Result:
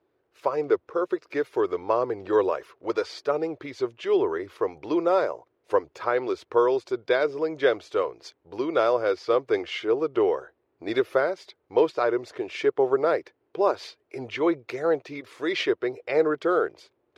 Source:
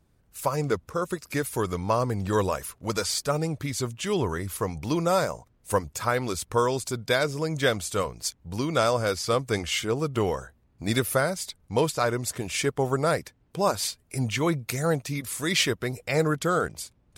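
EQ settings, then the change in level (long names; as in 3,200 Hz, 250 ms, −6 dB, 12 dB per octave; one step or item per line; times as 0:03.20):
high-pass filter 130 Hz 12 dB per octave
high-frequency loss of the air 270 metres
low shelf with overshoot 270 Hz −10.5 dB, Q 3
0.0 dB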